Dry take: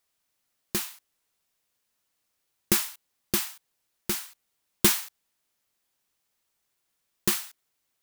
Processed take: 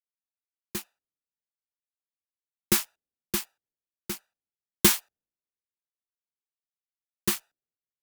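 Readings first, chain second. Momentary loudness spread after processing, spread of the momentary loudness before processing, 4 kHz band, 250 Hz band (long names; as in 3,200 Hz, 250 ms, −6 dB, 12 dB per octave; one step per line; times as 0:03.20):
18 LU, 16 LU, −0.5 dB, +0.5 dB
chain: adaptive Wiener filter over 41 samples
harmonic generator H 8 −38 dB, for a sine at −3.5 dBFS
multiband upward and downward expander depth 70%
level −4.5 dB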